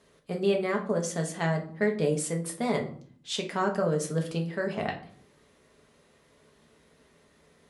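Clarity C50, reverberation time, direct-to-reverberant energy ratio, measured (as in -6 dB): 11.5 dB, 0.50 s, 1.0 dB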